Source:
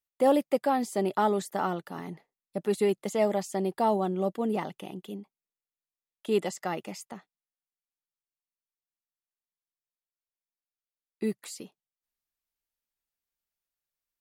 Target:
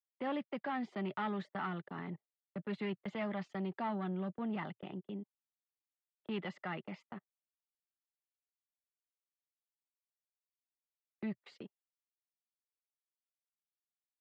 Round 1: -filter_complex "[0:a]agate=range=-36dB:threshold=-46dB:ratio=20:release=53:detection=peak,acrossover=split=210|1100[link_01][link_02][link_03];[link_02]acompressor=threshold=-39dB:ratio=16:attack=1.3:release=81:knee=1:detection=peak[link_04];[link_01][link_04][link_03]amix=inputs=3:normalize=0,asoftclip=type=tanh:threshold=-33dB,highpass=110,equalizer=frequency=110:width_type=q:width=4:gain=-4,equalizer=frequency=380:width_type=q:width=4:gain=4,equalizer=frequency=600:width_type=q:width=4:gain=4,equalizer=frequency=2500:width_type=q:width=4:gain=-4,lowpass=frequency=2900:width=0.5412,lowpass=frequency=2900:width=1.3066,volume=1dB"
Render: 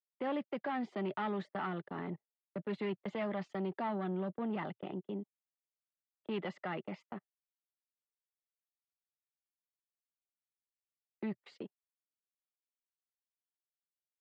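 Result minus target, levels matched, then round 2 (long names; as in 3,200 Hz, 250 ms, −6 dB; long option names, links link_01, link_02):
downward compressor: peak gain reduction −8.5 dB
-filter_complex "[0:a]agate=range=-36dB:threshold=-46dB:ratio=20:release=53:detection=peak,acrossover=split=210|1100[link_01][link_02][link_03];[link_02]acompressor=threshold=-48dB:ratio=16:attack=1.3:release=81:knee=1:detection=peak[link_04];[link_01][link_04][link_03]amix=inputs=3:normalize=0,asoftclip=type=tanh:threshold=-33dB,highpass=110,equalizer=frequency=110:width_type=q:width=4:gain=-4,equalizer=frequency=380:width_type=q:width=4:gain=4,equalizer=frequency=600:width_type=q:width=4:gain=4,equalizer=frequency=2500:width_type=q:width=4:gain=-4,lowpass=frequency=2900:width=0.5412,lowpass=frequency=2900:width=1.3066,volume=1dB"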